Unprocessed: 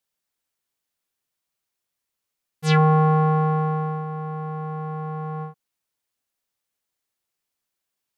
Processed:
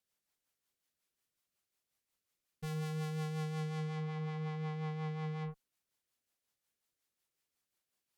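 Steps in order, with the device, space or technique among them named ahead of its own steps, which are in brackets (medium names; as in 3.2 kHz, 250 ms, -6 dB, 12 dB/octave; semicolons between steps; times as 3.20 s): overdriven rotary cabinet (valve stage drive 36 dB, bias 0.3; rotary cabinet horn 5.5 Hz)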